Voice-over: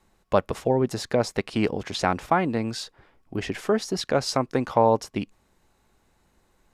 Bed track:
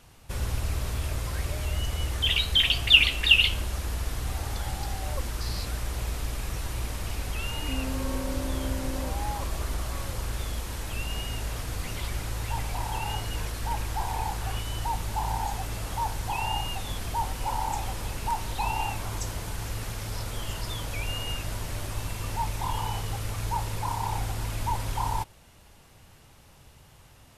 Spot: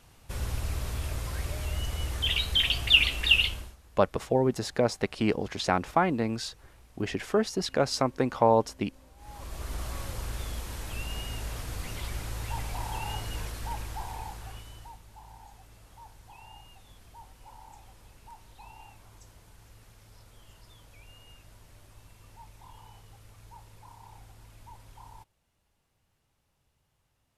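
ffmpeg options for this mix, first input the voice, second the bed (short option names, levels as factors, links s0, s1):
-filter_complex "[0:a]adelay=3650,volume=0.75[s0];[1:a]volume=8.41,afade=t=out:st=3.38:d=0.38:silence=0.0794328,afade=t=in:st=9.17:d=0.66:silence=0.0841395,afade=t=out:st=13.34:d=1.67:silence=0.133352[s1];[s0][s1]amix=inputs=2:normalize=0"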